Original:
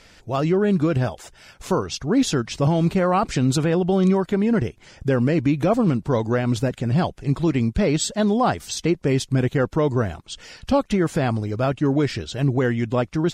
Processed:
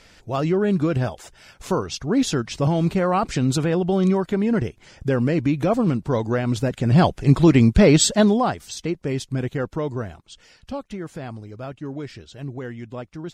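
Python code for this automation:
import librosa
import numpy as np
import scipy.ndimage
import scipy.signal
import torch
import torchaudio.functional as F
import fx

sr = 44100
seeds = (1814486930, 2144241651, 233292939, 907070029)

y = fx.gain(x, sr, db=fx.line((6.61, -1.0), (7.08, 6.5), (8.15, 6.5), (8.57, -5.0), (9.71, -5.0), (10.8, -12.0)))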